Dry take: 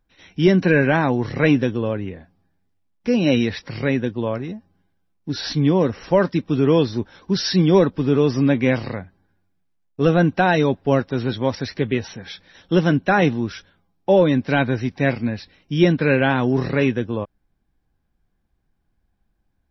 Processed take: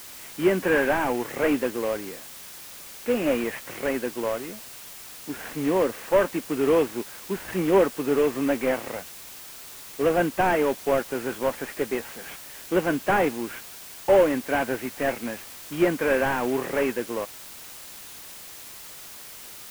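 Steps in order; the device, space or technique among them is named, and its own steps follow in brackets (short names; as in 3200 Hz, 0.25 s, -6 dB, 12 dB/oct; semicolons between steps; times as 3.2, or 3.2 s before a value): army field radio (BPF 390–2900 Hz; CVSD 16 kbps; white noise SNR 16 dB)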